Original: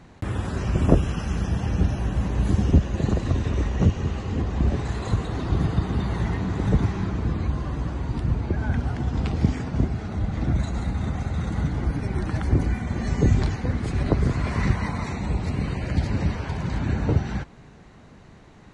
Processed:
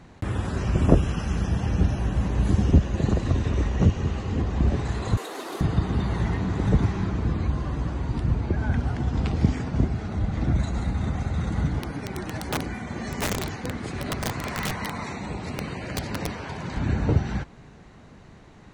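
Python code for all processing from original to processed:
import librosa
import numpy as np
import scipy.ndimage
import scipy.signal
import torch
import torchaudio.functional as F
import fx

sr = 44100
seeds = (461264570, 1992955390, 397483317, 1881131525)

y = fx.chain(x, sr, fx.cvsd(bps=64000),
    fx.highpass(hz=350.0, slope=24),
    fx.high_shelf(hz=5600.0, db=7.5), at=(5.17, 5.61))
y = fx.chain(y, sr, fx.highpass(hz=260.0, slope=6),
    fx.overflow_wrap(gain_db=20.5), at=(11.79, 16.77))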